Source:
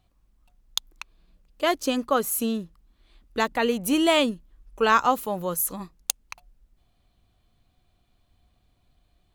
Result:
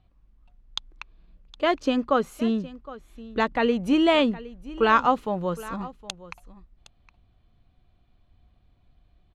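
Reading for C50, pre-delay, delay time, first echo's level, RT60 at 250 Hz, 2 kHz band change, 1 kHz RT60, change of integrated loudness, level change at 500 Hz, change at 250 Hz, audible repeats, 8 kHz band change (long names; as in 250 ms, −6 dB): no reverb audible, no reverb audible, 764 ms, −18.0 dB, no reverb audible, −0.5 dB, no reverb audible, +0.5 dB, +1.0 dB, +2.5 dB, 1, −16.5 dB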